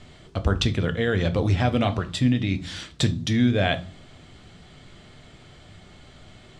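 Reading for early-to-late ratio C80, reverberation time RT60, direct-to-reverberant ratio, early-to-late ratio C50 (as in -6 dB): 22.5 dB, not exponential, 9.0 dB, 17.5 dB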